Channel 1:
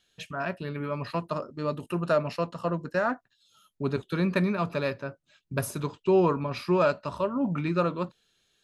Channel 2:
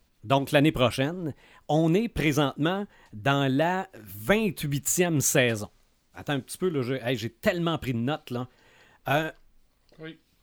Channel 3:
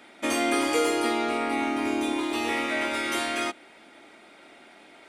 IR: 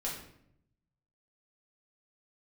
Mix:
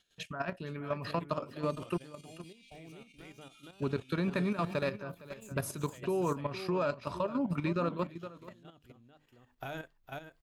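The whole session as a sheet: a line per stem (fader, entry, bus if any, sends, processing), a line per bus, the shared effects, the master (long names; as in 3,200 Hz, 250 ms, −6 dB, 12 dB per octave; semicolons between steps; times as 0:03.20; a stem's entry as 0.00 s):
+0.5 dB, 0.00 s, muted 0:01.98–0:03.50, no send, echo send −13 dB, downward compressor 2.5 to 1, threshold −27 dBFS, peak gain reduction 7 dB
0:08.94 −19 dB → 0:09.49 −10 dB, 0.55 s, no send, echo send −7 dB, low-shelf EQ 64 Hz +5 dB; mains-hum notches 50/100/150/200/250/300 Hz; automatic ducking −10 dB, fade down 1.40 s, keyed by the first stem
−19.0 dB, 1.40 s, no send, no echo send, Butterworth high-pass 2,300 Hz 96 dB per octave; brickwall limiter −29.5 dBFS, peak gain reduction 8.5 dB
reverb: not used
echo: single-tap delay 462 ms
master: output level in coarse steps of 10 dB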